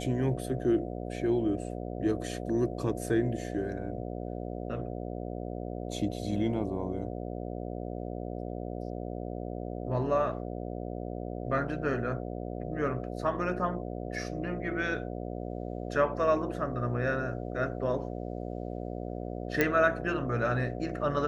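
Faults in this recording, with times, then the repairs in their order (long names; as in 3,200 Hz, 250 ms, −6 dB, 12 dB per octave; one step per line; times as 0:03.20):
mains buzz 60 Hz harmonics 12 −37 dBFS
0:19.61: click −11 dBFS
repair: click removal
hum removal 60 Hz, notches 12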